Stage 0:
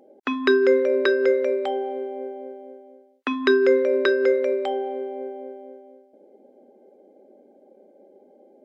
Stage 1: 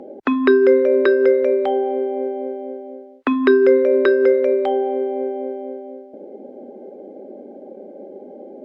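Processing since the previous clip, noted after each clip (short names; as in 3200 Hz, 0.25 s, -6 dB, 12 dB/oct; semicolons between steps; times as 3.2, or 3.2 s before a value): LPF 3500 Hz 6 dB/oct; tilt -2 dB/oct; three-band squash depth 40%; gain +3.5 dB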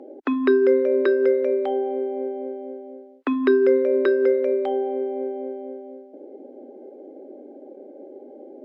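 resonant low shelf 230 Hz -6.5 dB, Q 3; gain -7 dB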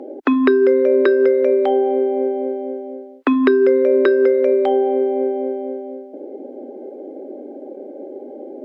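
compressor, threshold -19 dBFS, peak gain reduction 6.5 dB; gain +8.5 dB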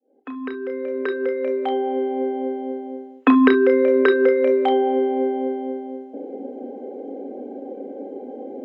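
opening faded in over 2.86 s; reverb, pre-delay 3 ms, DRR 2.5 dB; gain -6.5 dB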